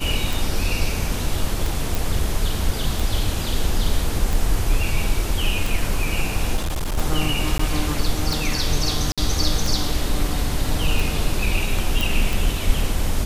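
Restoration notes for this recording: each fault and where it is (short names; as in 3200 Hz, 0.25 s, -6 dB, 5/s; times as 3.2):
tick 45 rpm
1.95 pop
6.56–6.98 clipped -20 dBFS
7.58–7.59 gap 14 ms
9.12–9.18 gap 56 ms
12.01 pop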